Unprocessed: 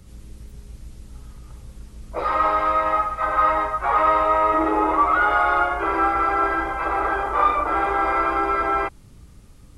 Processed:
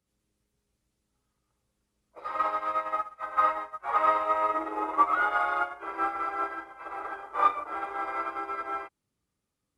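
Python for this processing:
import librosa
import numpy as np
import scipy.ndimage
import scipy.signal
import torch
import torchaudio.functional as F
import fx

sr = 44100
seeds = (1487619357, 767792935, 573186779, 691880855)

y = fx.highpass(x, sr, hz=360.0, slope=6)
y = fx.upward_expand(y, sr, threshold_db=-31.0, expansion=2.5)
y = y * 10.0 ** (-2.0 / 20.0)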